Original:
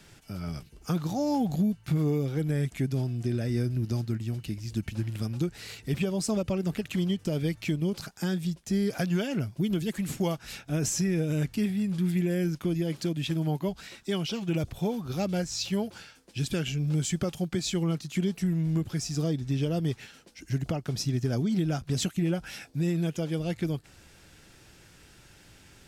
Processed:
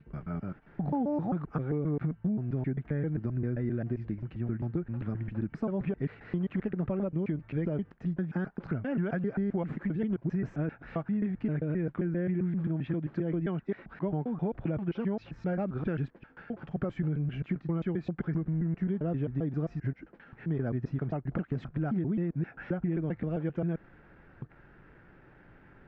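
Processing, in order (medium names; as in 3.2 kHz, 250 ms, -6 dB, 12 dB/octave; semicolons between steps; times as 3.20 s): slices played last to first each 132 ms, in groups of 6; compression, threshold -28 dBFS, peak gain reduction 6.5 dB; Chebyshev low-pass 1.7 kHz, order 3; peaking EQ 80 Hz -8 dB 0.86 oct; trim +2 dB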